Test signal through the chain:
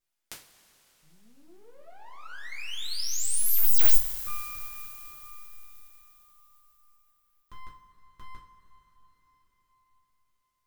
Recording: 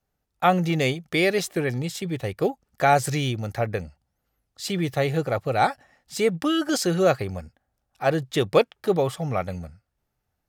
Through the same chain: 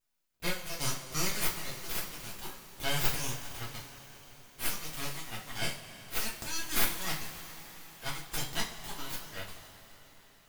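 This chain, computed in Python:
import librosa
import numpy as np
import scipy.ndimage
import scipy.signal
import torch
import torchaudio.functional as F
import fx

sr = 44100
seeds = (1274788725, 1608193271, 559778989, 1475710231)

y = np.diff(x, prepend=0.0)
y = np.abs(y)
y = fx.rev_double_slope(y, sr, seeds[0], early_s=0.31, late_s=5.0, knee_db=-20, drr_db=-5.0)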